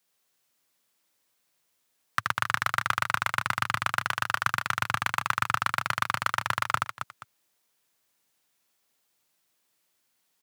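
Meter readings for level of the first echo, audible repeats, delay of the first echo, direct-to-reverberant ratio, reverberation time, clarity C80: -3.0 dB, 3, 77 ms, none, none, none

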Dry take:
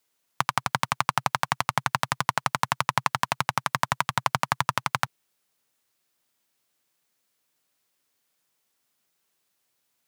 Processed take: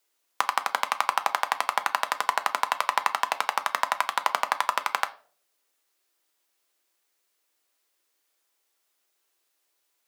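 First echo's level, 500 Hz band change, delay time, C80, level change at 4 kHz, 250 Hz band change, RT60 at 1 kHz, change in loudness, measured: none, +1.0 dB, none, 22.5 dB, -1.0 dB, -13.5 dB, 0.40 s, 0.0 dB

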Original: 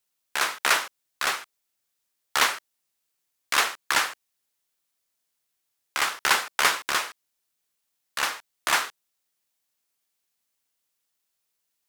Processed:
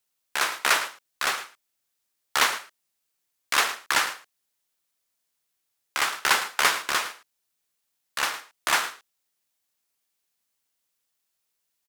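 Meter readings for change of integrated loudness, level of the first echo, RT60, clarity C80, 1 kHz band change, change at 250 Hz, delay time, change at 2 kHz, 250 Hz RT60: 0.0 dB, -14.0 dB, none, none, 0.0 dB, 0.0 dB, 0.109 s, 0.0 dB, none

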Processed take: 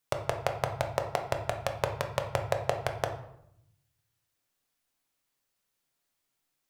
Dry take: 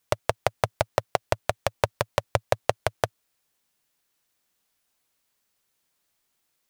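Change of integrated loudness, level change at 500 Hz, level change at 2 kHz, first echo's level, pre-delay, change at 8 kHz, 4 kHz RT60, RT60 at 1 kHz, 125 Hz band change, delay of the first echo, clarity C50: -4.5 dB, -4.5 dB, -5.0 dB, none, 7 ms, -6.0 dB, 0.50 s, 0.70 s, -3.0 dB, none, 8.5 dB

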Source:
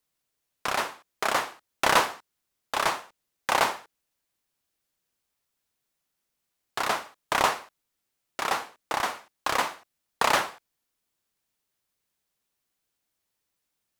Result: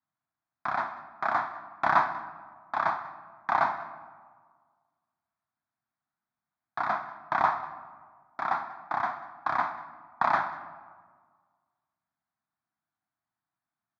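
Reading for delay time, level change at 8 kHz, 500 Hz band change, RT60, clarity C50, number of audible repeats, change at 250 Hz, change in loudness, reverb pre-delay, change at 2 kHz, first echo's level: 0.192 s, under -25 dB, -5.5 dB, 1.7 s, 11.5 dB, 1, -5.0 dB, -2.5 dB, 6 ms, -4.0 dB, -19.5 dB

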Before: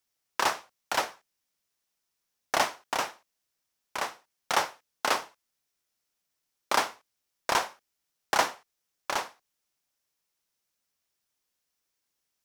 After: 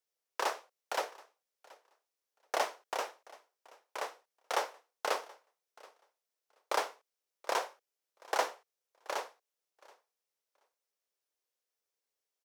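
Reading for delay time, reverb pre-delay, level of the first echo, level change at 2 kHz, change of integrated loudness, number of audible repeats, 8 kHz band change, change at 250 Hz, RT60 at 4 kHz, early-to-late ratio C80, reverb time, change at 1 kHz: 0.728 s, none, -23.0 dB, -8.5 dB, -7.0 dB, 1, -9.0 dB, -10.5 dB, none, none, none, -6.5 dB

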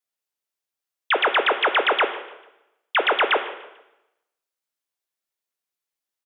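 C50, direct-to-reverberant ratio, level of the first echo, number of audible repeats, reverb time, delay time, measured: 9.5 dB, 7.0 dB, -18.0 dB, 2, 0.90 s, 0.148 s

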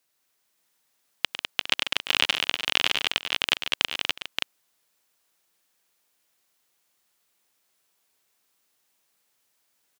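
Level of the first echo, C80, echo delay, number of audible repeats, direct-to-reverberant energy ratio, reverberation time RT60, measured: -11.0 dB, none, 0.103 s, 6, none, none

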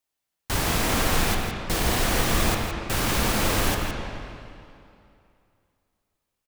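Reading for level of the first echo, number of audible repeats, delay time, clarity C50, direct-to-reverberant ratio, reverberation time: -9.0 dB, 1, 0.165 s, 1.0 dB, 0.0 dB, 2.6 s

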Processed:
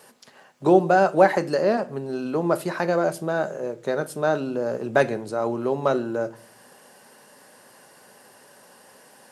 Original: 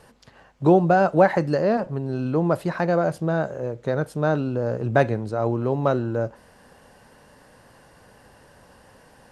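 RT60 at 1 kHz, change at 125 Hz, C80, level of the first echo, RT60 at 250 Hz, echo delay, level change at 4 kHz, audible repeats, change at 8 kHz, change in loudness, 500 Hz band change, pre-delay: 0.35 s, -8.5 dB, 25.0 dB, none, 0.75 s, none, +3.5 dB, none, n/a, -0.5 dB, +0.5 dB, 5 ms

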